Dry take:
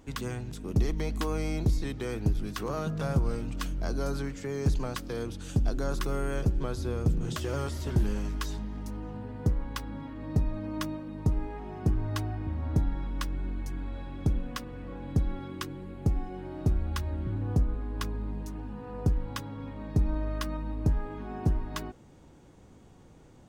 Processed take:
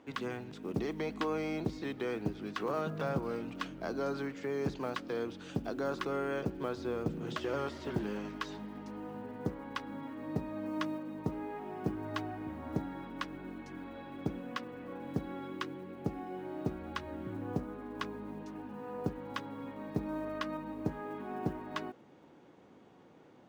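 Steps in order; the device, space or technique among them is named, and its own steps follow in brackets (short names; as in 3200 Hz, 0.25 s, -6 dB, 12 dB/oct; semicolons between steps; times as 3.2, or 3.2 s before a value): early digital voice recorder (BPF 240–3400 Hz; block floating point 7-bit)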